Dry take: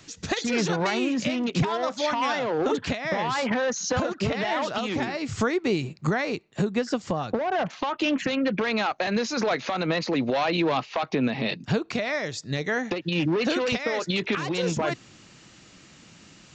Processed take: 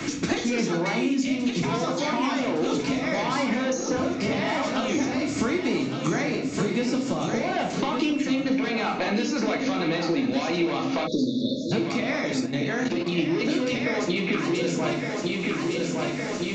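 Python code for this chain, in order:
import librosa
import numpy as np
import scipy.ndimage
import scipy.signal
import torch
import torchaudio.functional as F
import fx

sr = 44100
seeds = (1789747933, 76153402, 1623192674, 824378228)

y = fx.peak_eq(x, sr, hz=6300.0, db=5.0, octaves=1.2)
y = fx.echo_feedback(y, sr, ms=1162, feedback_pct=47, wet_db=-9.0)
y = fx.room_shoebox(y, sr, seeds[0], volume_m3=87.0, walls='mixed', distance_m=0.76)
y = fx.spec_erase(y, sr, start_s=11.07, length_s=0.65, low_hz=640.0, high_hz=3400.0)
y = fx.peak_eq(y, sr, hz=88.0, db=-4.0, octaves=1.6)
y = fx.level_steps(y, sr, step_db=9, at=(12.45, 13.17), fade=0.02)
y = fx.small_body(y, sr, hz=(270.0, 2200.0), ring_ms=45, db=11)
y = fx.band_squash(y, sr, depth_pct=100)
y = F.gain(torch.from_numpy(y), -7.0).numpy()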